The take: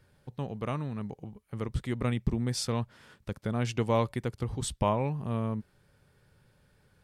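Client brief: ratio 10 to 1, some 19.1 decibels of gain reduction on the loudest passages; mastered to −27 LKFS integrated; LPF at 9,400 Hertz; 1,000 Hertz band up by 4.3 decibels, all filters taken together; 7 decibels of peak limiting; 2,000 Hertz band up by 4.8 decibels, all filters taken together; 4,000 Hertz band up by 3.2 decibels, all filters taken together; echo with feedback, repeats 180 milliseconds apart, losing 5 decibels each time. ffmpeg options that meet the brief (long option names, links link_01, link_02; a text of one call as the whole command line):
ffmpeg -i in.wav -af "lowpass=9400,equalizer=frequency=1000:width_type=o:gain=4,equalizer=frequency=2000:width_type=o:gain=4,equalizer=frequency=4000:width_type=o:gain=3,acompressor=threshold=-39dB:ratio=10,alimiter=level_in=10.5dB:limit=-24dB:level=0:latency=1,volume=-10.5dB,aecho=1:1:180|360|540|720|900|1080|1260:0.562|0.315|0.176|0.0988|0.0553|0.031|0.0173,volume=17.5dB" out.wav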